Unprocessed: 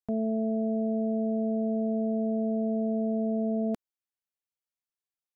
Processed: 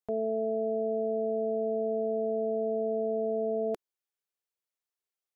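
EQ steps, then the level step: resonant low shelf 320 Hz -6 dB, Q 3; 0.0 dB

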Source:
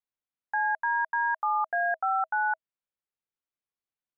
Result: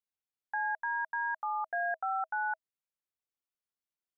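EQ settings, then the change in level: dynamic bell 1.1 kHz, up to -6 dB, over -42 dBFS, Q 3.9; -5.0 dB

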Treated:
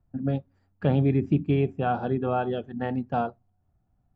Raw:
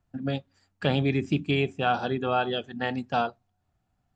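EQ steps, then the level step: tilt EQ -1.5 dB/octave; treble shelf 2 kHz -12 dB; treble shelf 5.1 kHz -8.5 dB; 0.0 dB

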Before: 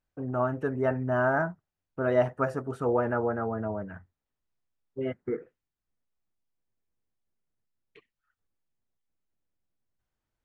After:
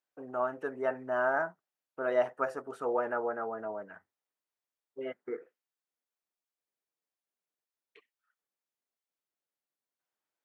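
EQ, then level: high-pass 430 Hz 12 dB/octave; -2.5 dB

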